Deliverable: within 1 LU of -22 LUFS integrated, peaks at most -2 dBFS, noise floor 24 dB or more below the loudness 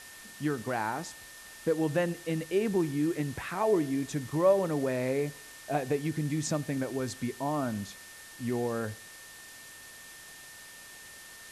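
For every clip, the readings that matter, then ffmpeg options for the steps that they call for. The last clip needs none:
steady tone 1.8 kHz; tone level -51 dBFS; noise floor -49 dBFS; noise floor target -55 dBFS; loudness -31.0 LUFS; peak level -13.5 dBFS; loudness target -22.0 LUFS
-> -af "bandreject=f=1800:w=30"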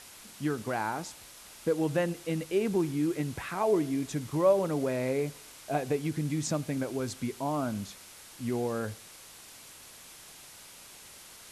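steady tone not found; noise floor -51 dBFS; noise floor target -55 dBFS
-> -af "afftdn=nr=6:nf=-51"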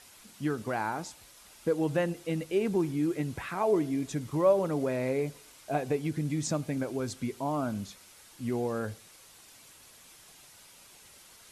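noise floor -55 dBFS; loudness -31.0 LUFS; peak level -13.5 dBFS; loudness target -22.0 LUFS
-> -af "volume=2.82"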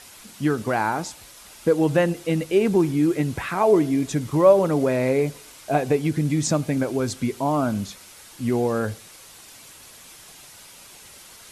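loudness -22.0 LUFS; peak level -4.5 dBFS; noise floor -46 dBFS

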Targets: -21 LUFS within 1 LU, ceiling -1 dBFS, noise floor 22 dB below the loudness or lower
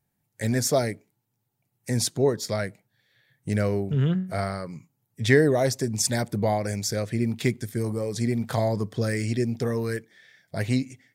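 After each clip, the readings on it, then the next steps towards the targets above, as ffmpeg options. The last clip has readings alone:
loudness -26.0 LUFS; peak level -4.5 dBFS; loudness target -21.0 LUFS
-> -af "volume=1.78,alimiter=limit=0.891:level=0:latency=1"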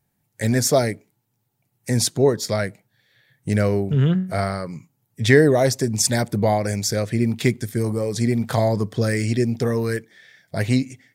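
loudness -21.0 LUFS; peak level -1.0 dBFS; noise floor -72 dBFS

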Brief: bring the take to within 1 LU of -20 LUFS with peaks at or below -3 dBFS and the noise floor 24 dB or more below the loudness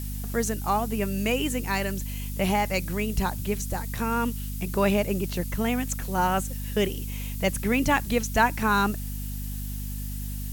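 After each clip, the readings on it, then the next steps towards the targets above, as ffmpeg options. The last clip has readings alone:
hum 50 Hz; highest harmonic 250 Hz; hum level -30 dBFS; noise floor -33 dBFS; noise floor target -51 dBFS; loudness -27.0 LUFS; peak level -9.0 dBFS; loudness target -20.0 LUFS
-> -af "bandreject=f=50:t=h:w=6,bandreject=f=100:t=h:w=6,bandreject=f=150:t=h:w=6,bandreject=f=200:t=h:w=6,bandreject=f=250:t=h:w=6"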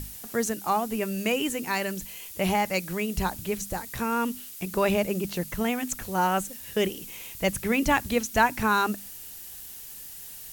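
hum not found; noise floor -42 dBFS; noise floor target -52 dBFS
-> -af "afftdn=nr=10:nf=-42"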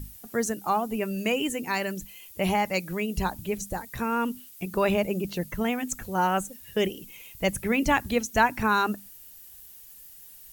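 noise floor -48 dBFS; noise floor target -52 dBFS
-> -af "afftdn=nr=6:nf=-48"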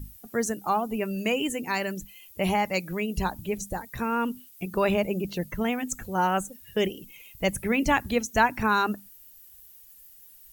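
noise floor -52 dBFS; loudness -27.5 LUFS; peak level -9.0 dBFS; loudness target -20.0 LUFS
-> -af "volume=2.37,alimiter=limit=0.708:level=0:latency=1"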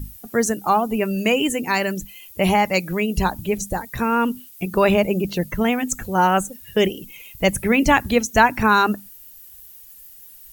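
loudness -20.0 LUFS; peak level -3.0 dBFS; noise floor -44 dBFS

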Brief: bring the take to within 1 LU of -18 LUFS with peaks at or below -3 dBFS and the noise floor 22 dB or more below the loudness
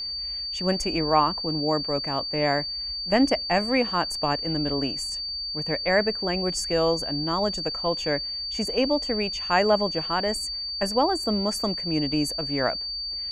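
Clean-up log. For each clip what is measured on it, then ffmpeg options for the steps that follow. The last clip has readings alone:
steady tone 4.6 kHz; tone level -29 dBFS; loudness -24.5 LUFS; peak level -7.5 dBFS; loudness target -18.0 LUFS
-> -af "bandreject=f=4600:w=30"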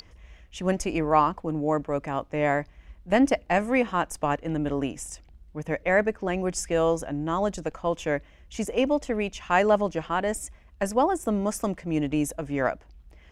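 steady tone not found; loudness -26.5 LUFS; peak level -8.0 dBFS; loudness target -18.0 LUFS
-> -af "volume=2.66,alimiter=limit=0.708:level=0:latency=1"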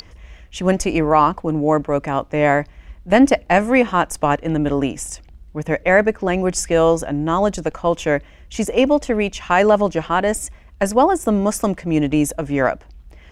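loudness -18.0 LUFS; peak level -3.0 dBFS; noise floor -45 dBFS

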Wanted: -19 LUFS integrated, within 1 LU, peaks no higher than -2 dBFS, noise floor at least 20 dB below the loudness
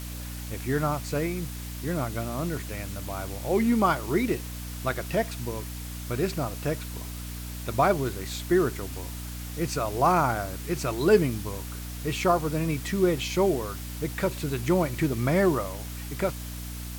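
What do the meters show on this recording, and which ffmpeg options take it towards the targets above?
hum 60 Hz; highest harmonic 300 Hz; hum level -35 dBFS; noise floor -37 dBFS; noise floor target -48 dBFS; loudness -28.0 LUFS; peak level -9.0 dBFS; loudness target -19.0 LUFS
-> -af "bandreject=f=60:t=h:w=6,bandreject=f=120:t=h:w=6,bandreject=f=180:t=h:w=6,bandreject=f=240:t=h:w=6,bandreject=f=300:t=h:w=6"
-af "afftdn=nr=11:nf=-37"
-af "volume=2.82,alimiter=limit=0.794:level=0:latency=1"

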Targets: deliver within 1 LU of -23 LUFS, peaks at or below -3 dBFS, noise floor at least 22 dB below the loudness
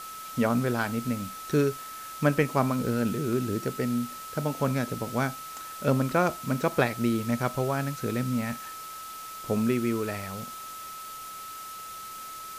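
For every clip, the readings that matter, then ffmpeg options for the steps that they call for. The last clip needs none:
steady tone 1.3 kHz; tone level -39 dBFS; noise floor -41 dBFS; noise floor target -52 dBFS; loudness -29.5 LUFS; peak level -9.0 dBFS; loudness target -23.0 LUFS
-> -af "bandreject=f=1300:w=30"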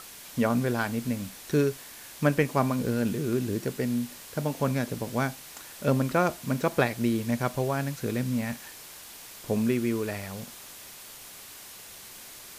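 steady tone not found; noise floor -46 dBFS; noise floor target -51 dBFS
-> -af "afftdn=nr=6:nf=-46"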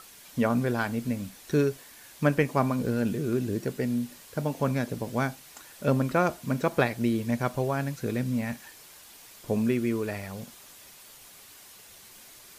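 noise floor -51 dBFS; loudness -28.5 LUFS; peak level -9.0 dBFS; loudness target -23.0 LUFS
-> -af "volume=1.88"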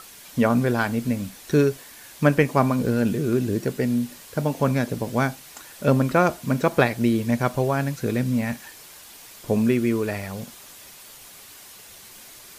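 loudness -23.0 LUFS; peak level -3.5 dBFS; noise floor -45 dBFS

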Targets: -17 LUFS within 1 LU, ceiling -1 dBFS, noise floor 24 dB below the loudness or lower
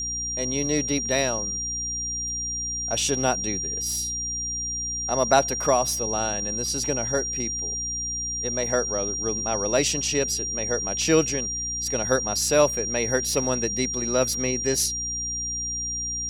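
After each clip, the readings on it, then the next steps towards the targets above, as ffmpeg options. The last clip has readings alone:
hum 60 Hz; highest harmonic 300 Hz; hum level -37 dBFS; steady tone 5.7 kHz; tone level -27 dBFS; loudness -24.0 LUFS; peak level -4.5 dBFS; loudness target -17.0 LUFS
-> -af "bandreject=f=60:t=h:w=4,bandreject=f=120:t=h:w=4,bandreject=f=180:t=h:w=4,bandreject=f=240:t=h:w=4,bandreject=f=300:t=h:w=4"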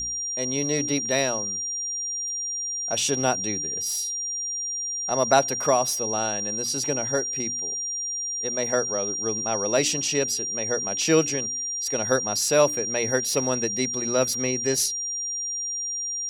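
hum not found; steady tone 5.7 kHz; tone level -27 dBFS
-> -af "bandreject=f=5700:w=30"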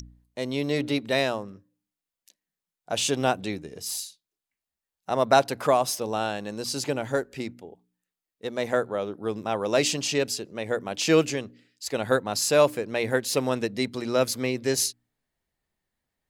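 steady tone not found; loudness -26.0 LUFS; peak level -5.0 dBFS; loudness target -17.0 LUFS
-> -af "volume=2.82,alimiter=limit=0.891:level=0:latency=1"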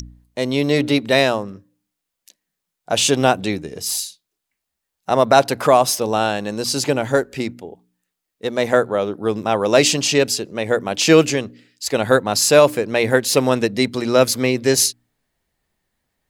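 loudness -17.5 LUFS; peak level -1.0 dBFS; noise floor -81 dBFS

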